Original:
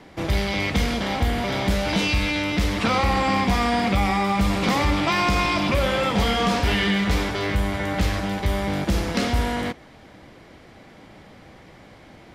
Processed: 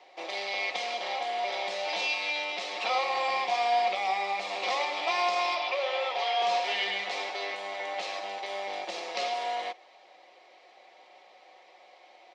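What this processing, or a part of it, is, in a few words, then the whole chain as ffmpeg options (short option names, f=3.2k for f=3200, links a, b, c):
phone speaker on a table: -filter_complex "[0:a]asettb=1/sr,asplit=3[a][b][c];[a]atrim=end=5.554[d];[b]atrim=start=5.55:end=6.42,asetpts=PTS-STARTPTS,afade=t=in:d=0.004:c=qsin,afade=t=out:st=0.866:d=0.004:c=qsin,acrossover=split=350 6200:gain=0.178 1 0.0631[e][f][g];[e][f][g]amix=inputs=3:normalize=0[h];[c]atrim=start=6.416[i];[d][h]acrossfade=d=0.004:c1=hsin:c2=qsin[j];[j][i]acrossfade=d=0.004:c1=qsin:c2=hsin,highpass=f=480:w=0.5412,highpass=f=480:w=1.3066,equalizer=f=740:t=q:w=4:g=7,equalizer=f=1.5k:t=q:w=4:g=-10,equalizer=f=2.5k:t=q:w=4:g=4,equalizer=f=4k:t=q:w=4:g=4,lowpass=f=6.7k:w=0.5412,lowpass=f=6.7k:w=1.3066,aecho=1:1:5.5:0.47,volume=-8dB"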